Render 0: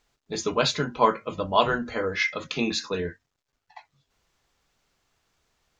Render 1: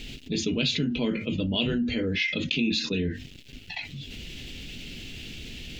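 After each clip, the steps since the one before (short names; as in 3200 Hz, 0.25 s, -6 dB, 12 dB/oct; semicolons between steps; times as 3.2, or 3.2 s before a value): EQ curve 150 Hz 0 dB, 250 Hz +5 dB, 1100 Hz -29 dB, 2800 Hz +4 dB, 6000 Hz -11 dB; fast leveller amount 70%; gain -3.5 dB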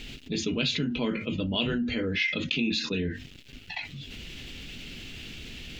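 bell 1200 Hz +7.5 dB 1.3 oct; gain -2.5 dB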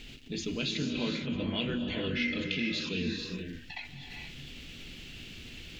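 non-linear reverb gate 0.5 s rising, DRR 2.5 dB; gain -6 dB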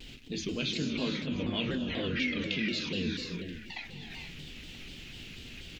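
echo 0.98 s -19 dB; shaped vibrato saw down 4.1 Hz, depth 160 cents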